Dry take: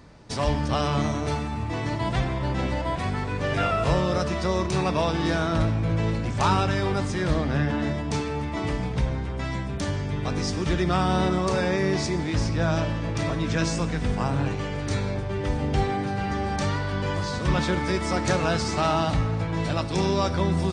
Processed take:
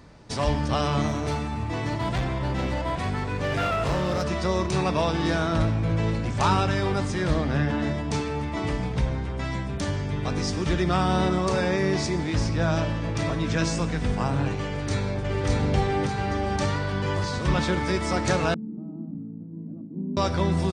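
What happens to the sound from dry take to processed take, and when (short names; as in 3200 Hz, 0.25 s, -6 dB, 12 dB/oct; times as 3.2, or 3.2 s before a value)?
1.08–4.26 hard clip -21 dBFS
14.65–15.47 echo throw 0.59 s, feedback 60%, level -1.5 dB
18.54–20.17 Butterworth band-pass 230 Hz, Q 2.4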